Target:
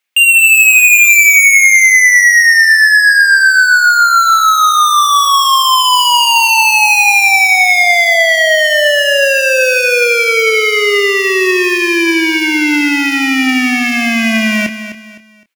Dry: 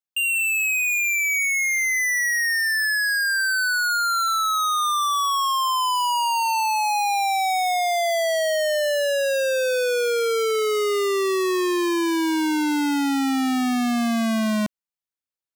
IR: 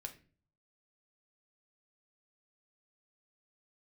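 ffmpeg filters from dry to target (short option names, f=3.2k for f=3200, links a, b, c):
-filter_complex "[0:a]highpass=250,equalizer=f=2.3k:w=1.2:g=14.5,asplit=2[a][b];[b]acontrast=70,volume=3dB[c];[a][c]amix=inputs=2:normalize=0,asoftclip=type=tanh:threshold=-8.5dB,asplit=2[d][e];[e]adelay=27,volume=-10.5dB[f];[d][f]amix=inputs=2:normalize=0,asplit=2[g][h];[h]aecho=0:1:256|512|768:0.266|0.0878|0.029[i];[g][i]amix=inputs=2:normalize=0,volume=2dB"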